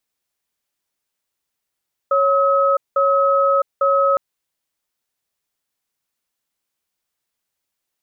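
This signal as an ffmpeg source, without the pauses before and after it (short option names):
-f lavfi -i "aevalsrc='0.168*(sin(2*PI*553*t)+sin(2*PI*1280*t))*clip(min(mod(t,0.85),0.66-mod(t,0.85))/0.005,0,1)':d=2.06:s=44100"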